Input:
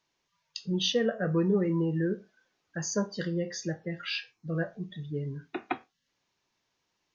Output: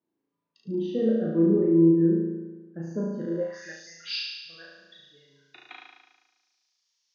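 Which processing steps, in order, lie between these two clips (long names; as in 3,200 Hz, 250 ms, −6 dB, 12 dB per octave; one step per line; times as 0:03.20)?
flutter between parallel walls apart 6.2 metres, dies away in 1.2 s
band-pass filter sweep 280 Hz → 5,300 Hz, 0:03.26–0:03.91
level +5 dB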